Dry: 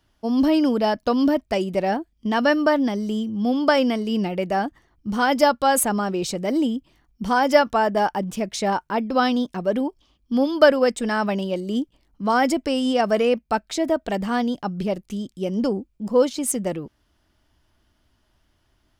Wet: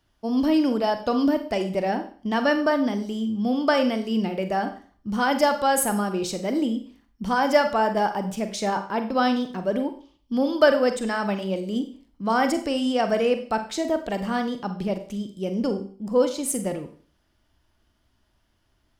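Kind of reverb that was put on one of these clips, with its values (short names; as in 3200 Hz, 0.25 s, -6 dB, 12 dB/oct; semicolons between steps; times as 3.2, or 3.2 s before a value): Schroeder reverb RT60 0.45 s, combs from 32 ms, DRR 7.5 dB; gain -3 dB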